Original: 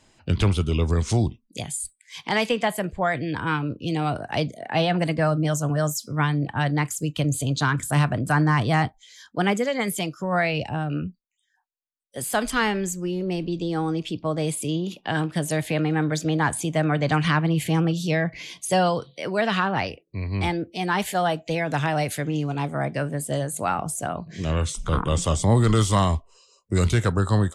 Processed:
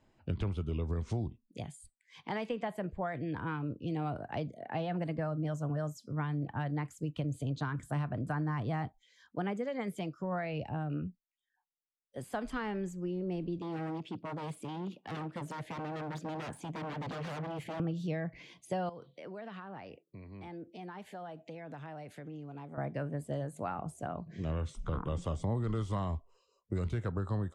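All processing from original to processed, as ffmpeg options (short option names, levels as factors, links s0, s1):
-filter_complex "[0:a]asettb=1/sr,asplit=3[s0][s1][s2];[s0]atrim=end=13.584[s3];[s1]atrim=start=13.58:end=17.8,asetpts=PTS-STARTPTS,afade=t=in:d=0.004:c=qsin,afade=t=out:st=4.216:d=0.004:c=qsin,aeval=exprs='0.0631*(abs(mod(val(0)/0.0631+3,4)-2)-1)':c=same,highpass=120[s4];[s2]atrim=start=17.796[s5];[s3][s4]acrossfade=d=0.004:c1=hsin:c2=qsin[s6];[s6][s5]acrossfade=d=0.004:c1=qsin:c2=hsin,asettb=1/sr,asplit=3[s7][s8][s9];[s7]atrim=end=18.894[s10];[s8]atrim=start=18.89:end=22.78,asetpts=PTS-STARTPTS,afade=t=in:d=0.004:c=qsin,afade=t=out:st=3.886:d=0.004:c=qsin,acompressor=threshold=0.0224:ratio=5:attack=3.2:release=140:knee=1:detection=peak,highpass=140[s11];[s9]atrim=start=22.776[s12];[s10][s11]acrossfade=d=0.004:c1=hsin:c2=qsin[s13];[s13][s12]acrossfade=d=0.004:c1=qsin:c2=hsin,acompressor=threshold=0.0708:ratio=4,lowpass=f=1100:p=1,volume=0.422"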